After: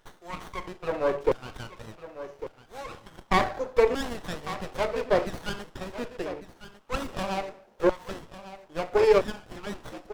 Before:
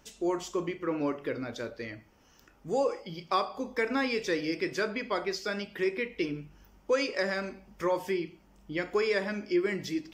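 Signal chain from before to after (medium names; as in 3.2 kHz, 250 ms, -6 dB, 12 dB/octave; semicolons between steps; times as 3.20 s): LFO high-pass saw down 0.76 Hz 430–1900 Hz; dynamic bell 360 Hz, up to +4 dB, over -35 dBFS, Q 0.7; delay 1150 ms -13.5 dB; sliding maximum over 17 samples; trim +2 dB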